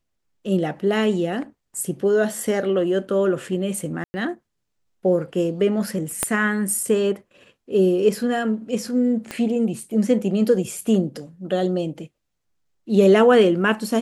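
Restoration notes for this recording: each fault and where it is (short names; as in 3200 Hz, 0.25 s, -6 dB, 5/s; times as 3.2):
4.04–4.14 gap 0.1 s
6.23 pop -6 dBFS
9.31 pop -14 dBFS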